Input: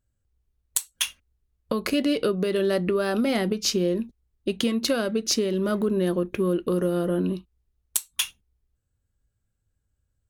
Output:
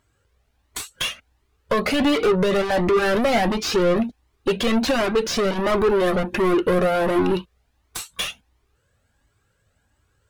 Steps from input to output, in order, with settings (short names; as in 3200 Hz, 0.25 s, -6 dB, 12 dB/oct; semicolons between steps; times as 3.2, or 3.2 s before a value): overdrive pedal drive 35 dB, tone 1900 Hz, clips at -6.5 dBFS; cascading flanger rising 1.4 Hz